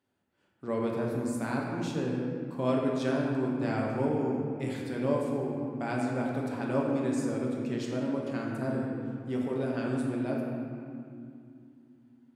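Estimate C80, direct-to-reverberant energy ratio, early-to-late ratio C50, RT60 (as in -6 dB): 2.0 dB, -2.5 dB, 0.0 dB, 2.5 s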